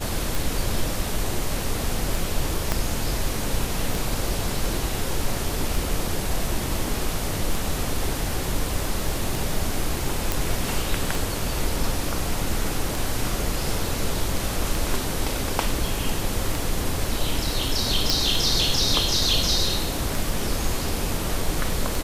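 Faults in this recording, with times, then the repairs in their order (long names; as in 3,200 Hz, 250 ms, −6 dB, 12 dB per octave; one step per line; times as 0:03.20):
scratch tick 33 1/3 rpm
0:02.72: click −7 dBFS
0:10.32: click
0:18.10: click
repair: click removal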